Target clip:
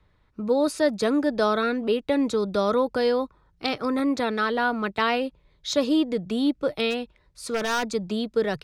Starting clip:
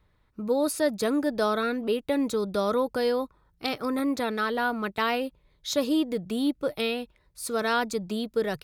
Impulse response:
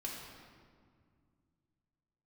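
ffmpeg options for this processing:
-filter_complex "[0:a]acrossover=split=140[a][b];[b]lowpass=6.8k[c];[a][c]amix=inputs=2:normalize=0,asplit=3[d][e][f];[d]afade=t=out:st=6.9:d=0.02[g];[e]aeval=exprs='0.0944*(abs(mod(val(0)/0.0944+3,4)-2)-1)':c=same,afade=t=in:st=6.9:d=0.02,afade=t=out:st=7.93:d=0.02[h];[f]afade=t=in:st=7.93:d=0.02[i];[g][h][i]amix=inputs=3:normalize=0,volume=3dB"

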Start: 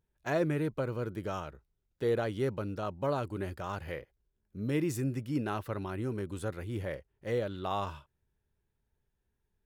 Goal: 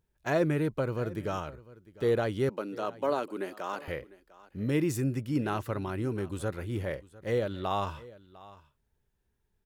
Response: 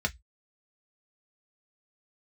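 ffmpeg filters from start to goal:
-filter_complex "[0:a]asettb=1/sr,asplit=3[a][b][c];[a]atrim=end=2.494[d];[b]atrim=start=2.49:end=3.88,asetpts=PTS-STARTPTS,afade=t=in:d=0.004:c=qsin,afade=t=out:st=1.386:d=0.004:c=qsin,highpass=f=240:w=0.5412,highpass=f=240:w=1.3066[e];[c]atrim=start=3.876[f];[d][e]acrossfade=d=0.004:c1=hsin:c2=qsin[g];[g][f]acrossfade=d=0.004:c1=qsin:c2=hsin,aecho=1:1:701:0.1,volume=3dB"

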